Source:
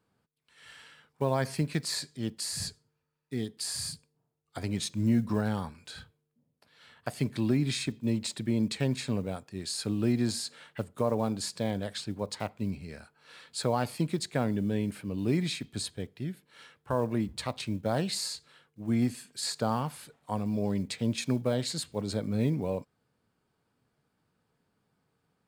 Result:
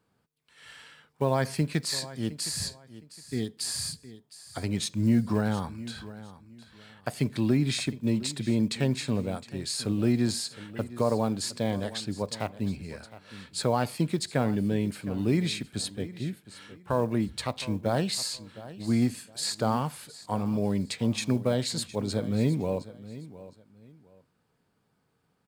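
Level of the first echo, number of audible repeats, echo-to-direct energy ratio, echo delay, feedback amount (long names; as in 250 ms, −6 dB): −16.5 dB, 2, −16.0 dB, 713 ms, 25%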